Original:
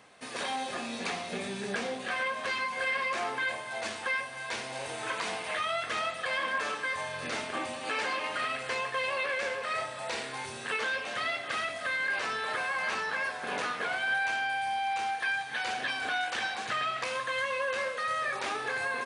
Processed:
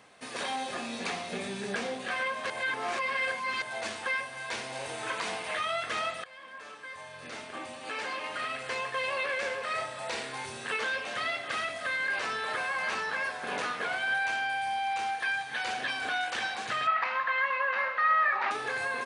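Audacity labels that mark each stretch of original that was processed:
2.500000	3.620000	reverse
6.240000	9.160000	fade in, from −21 dB
16.870000	18.510000	loudspeaker in its box 280–3,800 Hz, peaks and dips at 320 Hz −7 dB, 480 Hz −9 dB, 880 Hz +9 dB, 1,300 Hz +7 dB, 1,900 Hz +7 dB, 3,400 Hz −7 dB

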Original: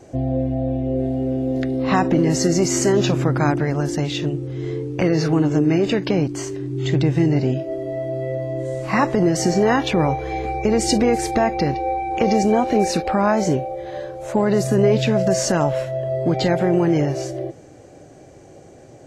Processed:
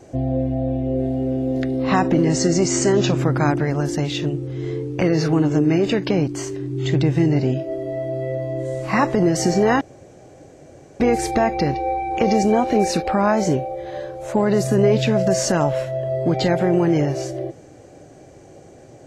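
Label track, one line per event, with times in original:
2.250000	3.180000	Butterworth low-pass 8,800 Hz 72 dB per octave
9.810000	11.000000	fill with room tone

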